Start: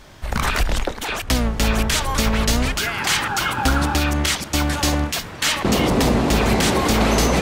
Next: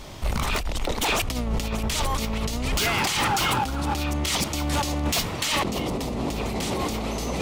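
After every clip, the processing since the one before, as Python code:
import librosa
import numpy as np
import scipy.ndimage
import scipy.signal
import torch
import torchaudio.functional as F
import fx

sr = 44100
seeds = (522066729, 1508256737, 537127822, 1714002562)

y = fx.peak_eq(x, sr, hz=1600.0, db=-10.0, octaves=0.42)
y = fx.over_compress(y, sr, threshold_db=-25.0, ratio=-1.0)
y = np.clip(10.0 ** (19.0 / 20.0) * y, -1.0, 1.0) / 10.0 ** (19.0 / 20.0)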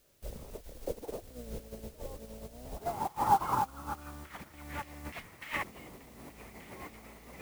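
y = fx.filter_sweep_lowpass(x, sr, from_hz=510.0, to_hz=2000.0, start_s=2.16, end_s=4.72, q=3.2)
y = fx.quant_dither(y, sr, seeds[0], bits=6, dither='triangular')
y = fx.upward_expand(y, sr, threshold_db=-33.0, expansion=2.5)
y = F.gain(torch.from_numpy(y), -5.5).numpy()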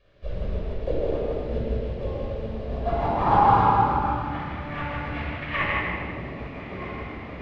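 y = scipy.signal.sosfilt(scipy.signal.butter(4, 3500.0, 'lowpass', fs=sr, output='sos'), x)
y = y + 10.0 ** (-3.5 / 20.0) * np.pad(y, (int(158 * sr / 1000.0), 0))[:len(y)]
y = fx.room_shoebox(y, sr, seeds[1], volume_m3=3200.0, walls='mixed', distance_m=5.7)
y = F.gain(torch.from_numpy(y), 3.5).numpy()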